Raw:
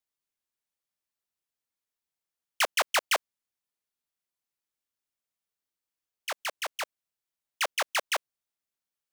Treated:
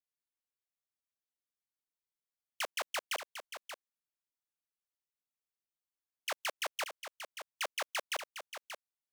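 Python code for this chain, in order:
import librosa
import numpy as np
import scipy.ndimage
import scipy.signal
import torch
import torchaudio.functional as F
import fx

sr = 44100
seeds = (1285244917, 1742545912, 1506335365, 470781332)

p1 = fx.level_steps(x, sr, step_db=22)
p2 = p1 + fx.echo_single(p1, sr, ms=581, db=-9.5, dry=0)
y = F.gain(torch.from_numpy(p2), 9.5).numpy()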